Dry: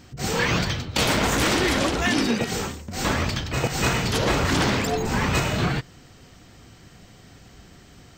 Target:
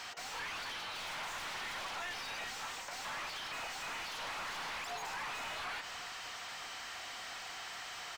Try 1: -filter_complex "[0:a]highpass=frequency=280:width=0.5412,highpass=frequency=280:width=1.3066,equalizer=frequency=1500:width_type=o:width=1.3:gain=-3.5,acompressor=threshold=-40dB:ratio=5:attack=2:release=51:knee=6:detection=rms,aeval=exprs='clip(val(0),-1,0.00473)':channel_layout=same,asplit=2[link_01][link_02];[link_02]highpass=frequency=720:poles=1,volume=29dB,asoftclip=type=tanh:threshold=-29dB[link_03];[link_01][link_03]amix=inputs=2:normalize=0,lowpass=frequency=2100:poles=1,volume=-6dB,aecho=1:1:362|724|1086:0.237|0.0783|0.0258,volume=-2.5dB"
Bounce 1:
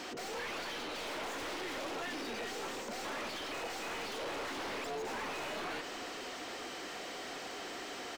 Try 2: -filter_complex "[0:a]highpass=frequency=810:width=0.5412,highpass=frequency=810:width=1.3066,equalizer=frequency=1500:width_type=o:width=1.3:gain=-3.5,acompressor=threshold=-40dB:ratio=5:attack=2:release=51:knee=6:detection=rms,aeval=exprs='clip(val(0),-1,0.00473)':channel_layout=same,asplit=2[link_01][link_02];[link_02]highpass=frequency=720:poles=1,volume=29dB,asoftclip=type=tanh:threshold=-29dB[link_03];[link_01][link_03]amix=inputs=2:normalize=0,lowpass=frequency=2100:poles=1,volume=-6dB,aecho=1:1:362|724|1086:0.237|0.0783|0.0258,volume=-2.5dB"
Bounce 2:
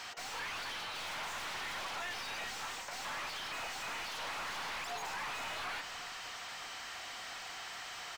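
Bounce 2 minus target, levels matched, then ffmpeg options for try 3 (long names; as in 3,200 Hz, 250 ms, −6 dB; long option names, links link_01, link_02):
downward compressor: peak gain reduction −5 dB
-filter_complex "[0:a]highpass=frequency=810:width=0.5412,highpass=frequency=810:width=1.3066,equalizer=frequency=1500:width_type=o:width=1.3:gain=-3.5,acompressor=threshold=-46.5dB:ratio=5:attack=2:release=51:knee=6:detection=rms,aeval=exprs='clip(val(0),-1,0.00473)':channel_layout=same,asplit=2[link_01][link_02];[link_02]highpass=frequency=720:poles=1,volume=29dB,asoftclip=type=tanh:threshold=-29dB[link_03];[link_01][link_03]amix=inputs=2:normalize=0,lowpass=frequency=2100:poles=1,volume=-6dB,aecho=1:1:362|724|1086:0.237|0.0783|0.0258,volume=-2.5dB"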